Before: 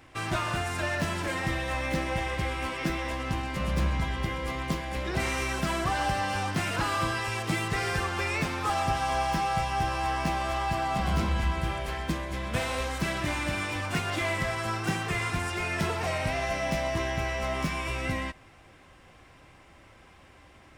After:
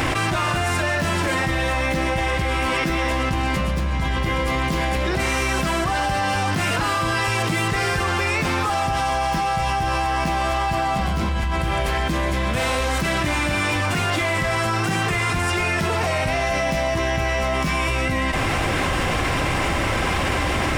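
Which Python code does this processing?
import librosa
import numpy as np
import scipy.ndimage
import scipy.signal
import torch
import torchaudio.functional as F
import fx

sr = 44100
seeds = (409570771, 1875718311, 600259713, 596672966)

y = fx.env_flatten(x, sr, amount_pct=100)
y = y * 10.0 ** (2.0 / 20.0)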